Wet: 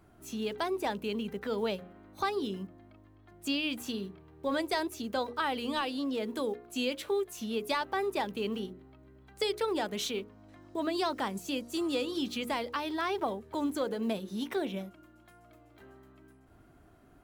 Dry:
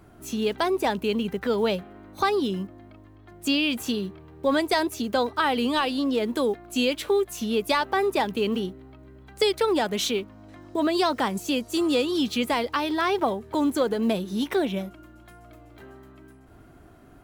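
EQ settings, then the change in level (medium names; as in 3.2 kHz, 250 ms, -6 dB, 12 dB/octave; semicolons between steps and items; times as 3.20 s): hum notches 60/120/180/240/300/360/420/480/540 Hz; -8.0 dB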